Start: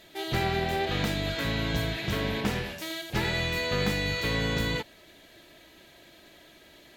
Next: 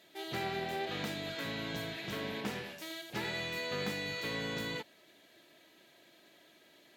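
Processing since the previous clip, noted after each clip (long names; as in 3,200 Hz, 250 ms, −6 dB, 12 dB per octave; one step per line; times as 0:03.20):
high-pass filter 170 Hz 12 dB per octave
level −8 dB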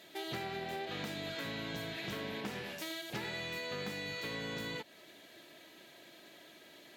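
downward compressor 4 to 1, threshold −44 dBFS, peak gain reduction 10.5 dB
level +5.5 dB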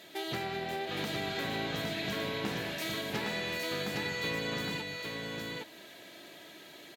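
single-tap delay 812 ms −3 dB
level +4 dB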